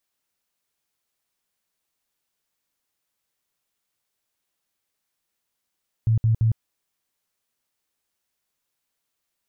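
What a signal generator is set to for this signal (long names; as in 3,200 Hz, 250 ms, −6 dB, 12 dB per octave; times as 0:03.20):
tone bursts 112 Hz, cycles 12, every 0.17 s, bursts 3, −15.5 dBFS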